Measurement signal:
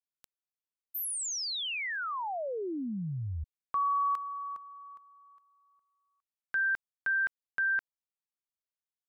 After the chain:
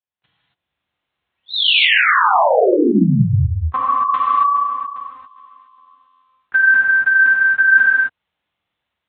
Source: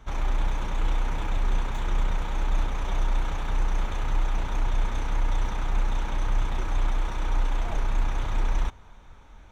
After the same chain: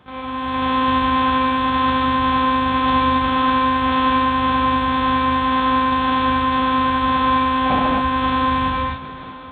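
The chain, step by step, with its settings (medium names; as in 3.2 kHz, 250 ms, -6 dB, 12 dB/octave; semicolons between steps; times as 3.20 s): level rider gain up to 16.5 dB; monotone LPC vocoder at 8 kHz 260 Hz; high-pass 61 Hz 24 dB/octave; gated-style reverb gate 300 ms flat, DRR -6.5 dB; in parallel at -2 dB: compression, threshold -21 dBFS; on the sum: trim -4 dB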